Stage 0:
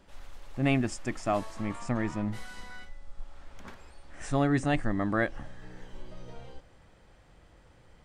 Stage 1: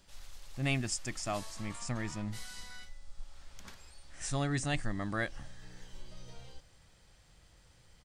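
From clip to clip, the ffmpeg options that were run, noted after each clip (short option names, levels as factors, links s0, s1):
-af "firequalizer=gain_entry='entry(150,0);entry(250,-6);entry(4600,10)':delay=0.05:min_phase=1,volume=0.631"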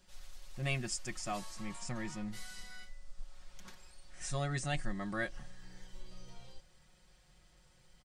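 -af "aecho=1:1:5.5:0.69,volume=0.596"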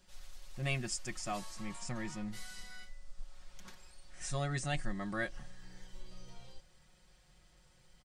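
-af anull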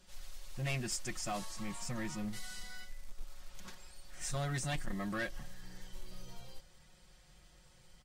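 -af "acrusher=bits=5:mode=log:mix=0:aa=0.000001,asoftclip=type=tanh:threshold=0.02,volume=1.41" -ar 48000 -c:a libvorbis -b:a 48k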